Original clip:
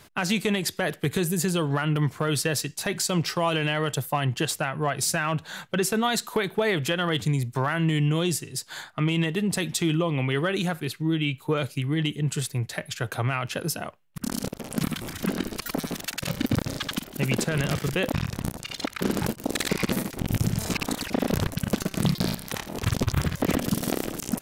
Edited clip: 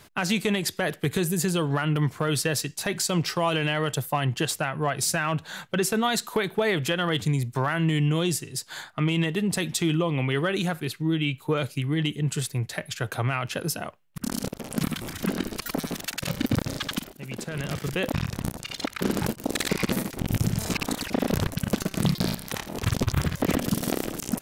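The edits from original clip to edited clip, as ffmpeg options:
-filter_complex "[0:a]asplit=2[a][b];[a]atrim=end=17.13,asetpts=PTS-STARTPTS,afade=t=out:st=17.126:d=0.004:c=hsin:silence=0.141254[c];[b]atrim=start=17.13,asetpts=PTS-STARTPTS,afade=t=in:d=1.08:silence=0.141254[d];[c][d]concat=n=2:v=0:a=1"

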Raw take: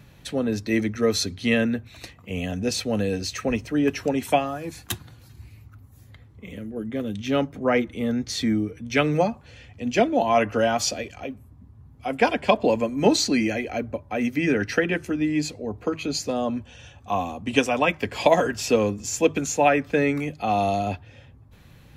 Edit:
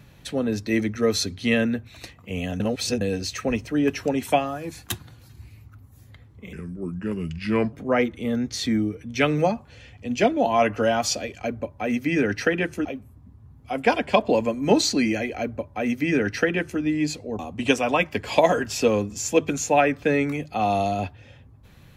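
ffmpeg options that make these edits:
-filter_complex "[0:a]asplit=8[a][b][c][d][e][f][g][h];[a]atrim=end=2.602[i];[b]atrim=start=2.598:end=3.012,asetpts=PTS-STARTPTS,areverse[j];[c]atrim=start=3.008:end=6.534[k];[d]atrim=start=6.53:end=7.49,asetpts=PTS-STARTPTS,asetrate=35280,aresample=44100[l];[e]atrim=start=7.486:end=11.202[m];[f]atrim=start=13.748:end=15.162[n];[g]atrim=start=11.198:end=15.742[o];[h]atrim=start=17.268[p];[i][j]acrossfade=d=0.004:c1=hsin:c2=hsin[q];[q][k]acrossfade=d=0.004:c1=hsin:c2=hsin[r];[r][l]acrossfade=d=0.004:c1=hsin:c2=hsin[s];[s][m]acrossfade=d=0.004:c1=hsin:c2=hsin[t];[t][n]acrossfade=d=0.004:c1=hsin:c2=hsin[u];[u][o]acrossfade=d=0.004:c1=hsin:c2=hsin[v];[v][p]acrossfade=d=0.004:c1=hsin:c2=hsin"

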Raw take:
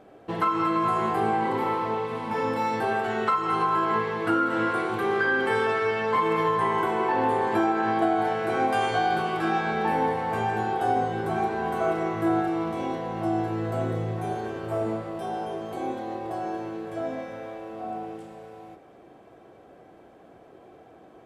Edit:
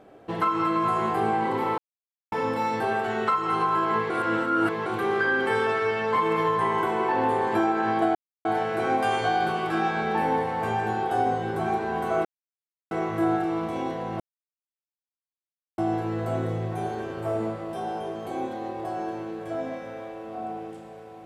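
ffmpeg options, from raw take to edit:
-filter_complex "[0:a]asplit=8[a][b][c][d][e][f][g][h];[a]atrim=end=1.78,asetpts=PTS-STARTPTS,afade=t=out:st=1.776:d=0.004:c=hsin[i];[b]atrim=start=1.78:end=2.32,asetpts=PTS-STARTPTS,volume=0[j];[c]atrim=start=2.32:end=4.102,asetpts=PTS-STARTPTS,afade=t=in:d=0.004:c=hsin[k];[d]atrim=start=4.098:end=4.862,asetpts=PTS-STARTPTS,areverse[l];[e]atrim=start=4.858:end=8.15,asetpts=PTS-STARTPTS,afade=t=out:st=3.288:d=0.004:c=hsin,apad=pad_dur=0.3[m];[f]atrim=start=8.15:end=11.95,asetpts=PTS-STARTPTS,afade=t=in:d=0.004:c=hsin,afade=t=out:st=3.796:d=0.004:c=hsin,apad=pad_dur=0.66[n];[g]atrim=start=11.95:end=13.24,asetpts=PTS-STARTPTS,afade=t=in:d=0.004:c=hsin,afade=t=out:st=1.286:d=0.004:c=hsin,apad=pad_dur=1.58[o];[h]atrim=start=13.24,asetpts=PTS-STARTPTS,afade=t=in:d=0.004:c=hsin[p];[i][j][k]concat=n=3:v=0:a=1[q];[q][l]acrossfade=d=0.004:c1=hsin:c2=hsin[r];[m][n][o][p]concat=n=4:v=0:a=1[s];[r][s]acrossfade=d=0.004:c1=hsin:c2=hsin"

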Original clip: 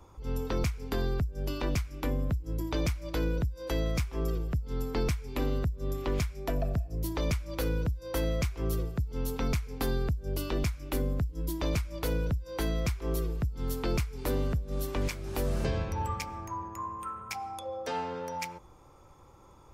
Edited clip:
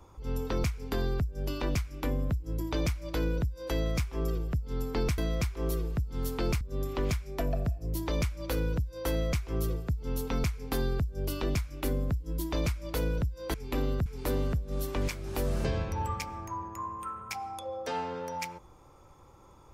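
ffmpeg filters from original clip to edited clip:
-filter_complex "[0:a]asplit=5[a][b][c][d][e];[a]atrim=end=5.182[f];[b]atrim=start=12.628:end=14.062[g];[c]atrim=start=5.698:end=12.632[h];[d]atrim=start=5.178:end=5.702[i];[e]atrim=start=14.058[j];[f][g]acrossfade=d=0.004:c1=hsin:c2=hsin[k];[k][h]acrossfade=d=0.004:c1=hsin:c2=hsin[l];[l][i]acrossfade=d=0.004:c1=hsin:c2=hsin[m];[m][j]acrossfade=d=0.004:c1=hsin:c2=hsin"

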